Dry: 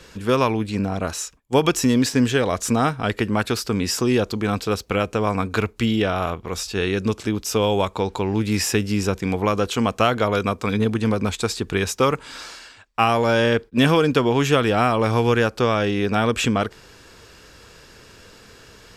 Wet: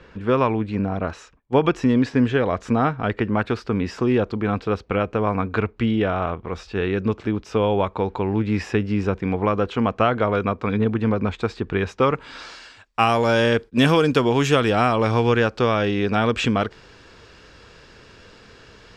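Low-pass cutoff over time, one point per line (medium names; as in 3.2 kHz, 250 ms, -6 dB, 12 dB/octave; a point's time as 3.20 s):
11.89 s 2.2 kHz
12.35 s 3.8 kHz
13.00 s 10 kHz
14.45 s 10 kHz
15.34 s 4.7 kHz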